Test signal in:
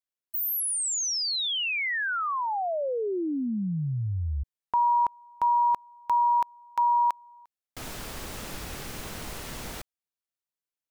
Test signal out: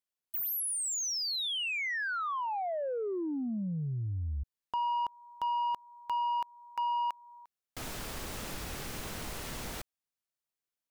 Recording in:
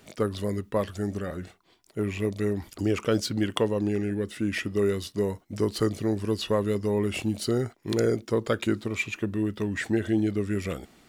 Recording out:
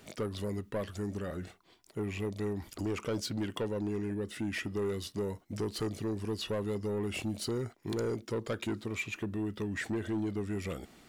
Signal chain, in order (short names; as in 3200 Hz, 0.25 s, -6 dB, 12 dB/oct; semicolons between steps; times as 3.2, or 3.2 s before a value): in parallel at +3 dB: compressor 6:1, threshold -34 dBFS; on the sum: soft clip -19 dBFS; gain -8.5 dB